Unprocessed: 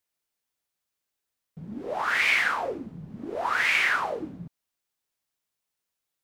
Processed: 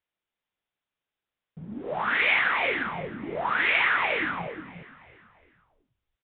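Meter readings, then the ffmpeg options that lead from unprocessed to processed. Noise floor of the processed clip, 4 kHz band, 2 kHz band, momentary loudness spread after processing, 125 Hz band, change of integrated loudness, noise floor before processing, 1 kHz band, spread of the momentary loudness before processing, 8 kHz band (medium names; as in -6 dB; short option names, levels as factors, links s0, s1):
under -85 dBFS, 0.0 dB, +1.0 dB, 17 LU, +1.0 dB, 0.0 dB, -85 dBFS, +1.0 dB, 19 LU, under -35 dB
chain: -filter_complex "[0:a]asplit=2[s0][s1];[s1]asplit=4[s2][s3][s4][s5];[s2]adelay=331,afreqshift=-48,volume=0.112[s6];[s3]adelay=662,afreqshift=-96,volume=0.0575[s7];[s4]adelay=993,afreqshift=-144,volume=0.0292[s8];[s5]adelay=1324,afreqshift=-192,volume=0.015[s9];[s6][s7][s8][s9]amix=inputs=4:normalize=0[s10];[s0][s10]amix=inputs=2:normalize=0,aresample=8000,aresample=44100,asplit=2[s11][s12];[s12]aecho=0:1:354:0.531[s13];[s11][s13]amix=inputs=2:normalize=0"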